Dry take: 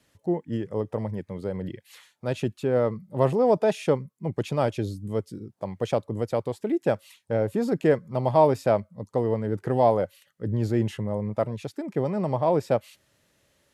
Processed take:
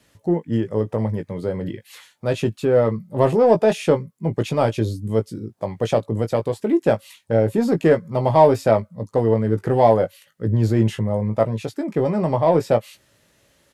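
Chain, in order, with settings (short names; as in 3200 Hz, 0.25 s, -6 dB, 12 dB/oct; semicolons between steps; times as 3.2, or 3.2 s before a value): in parallel at -9 dB: soft clip -21.5 dBFS, distortion -9 dB; on the sum: doubler 18 ms -7.5 dB; gain +3.5 dB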